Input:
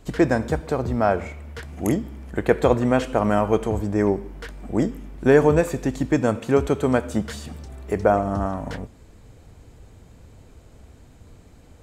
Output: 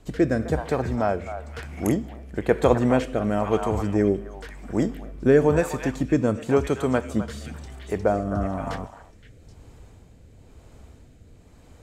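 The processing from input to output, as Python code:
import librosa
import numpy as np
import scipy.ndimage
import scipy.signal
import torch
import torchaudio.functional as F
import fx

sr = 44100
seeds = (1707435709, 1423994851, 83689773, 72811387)

y = fx.echo_stepped(x, sr, ms=259, hz=960.0, octaves=1.4, feedback_pct=70, wet_db=-4.0)
y = fx.rotary(y, sr, hz=1.0)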